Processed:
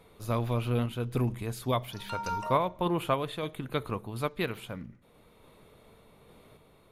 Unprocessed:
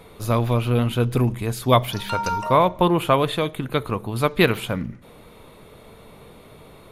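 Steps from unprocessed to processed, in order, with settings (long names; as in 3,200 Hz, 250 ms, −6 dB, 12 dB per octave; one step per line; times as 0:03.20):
sample-and-hold tremolo
level −8 dB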